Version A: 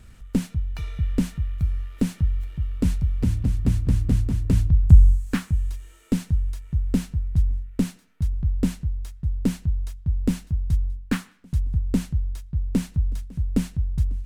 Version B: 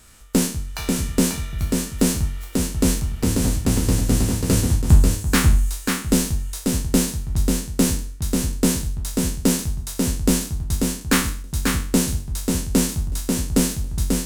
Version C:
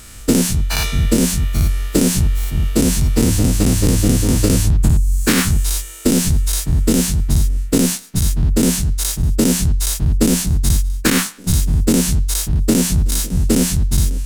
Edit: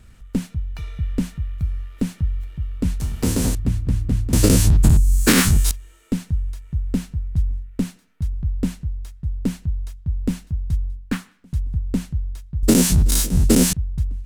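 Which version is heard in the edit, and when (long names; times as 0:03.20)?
A
0:03.00–0:03.55: punch in from B
0:04.33–0:05.71: punch in from C
0:12.63–0:13.73: punch in from C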